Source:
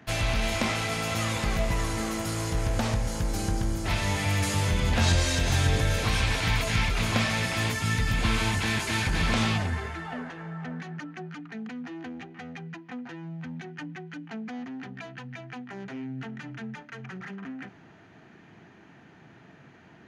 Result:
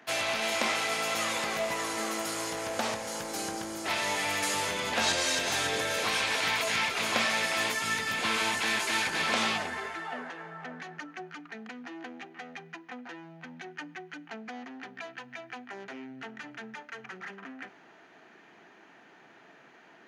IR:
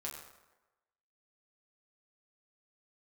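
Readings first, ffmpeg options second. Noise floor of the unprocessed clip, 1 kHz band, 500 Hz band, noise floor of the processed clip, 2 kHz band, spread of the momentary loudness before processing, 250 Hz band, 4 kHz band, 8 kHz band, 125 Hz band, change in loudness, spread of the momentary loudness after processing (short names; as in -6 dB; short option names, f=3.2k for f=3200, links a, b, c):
-53 dBFS, +1.0 dB, -0.5 dB, -56 dBFS, +0.5 dB, 16 LU, -8.0 dB, +0.5 dB, +1.0 dB, -21.5 dB, -1.0 dB, 17 LU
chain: -filter_complex "[0:a]highpass=400,asplit=2[a][b];[1:a]atrim=start_sample=2205[c];[b][c]afir=irnorm=-1:irlink=0,volume=-16.5dB[d];[a][d]amix=inputs=2:normalize=0"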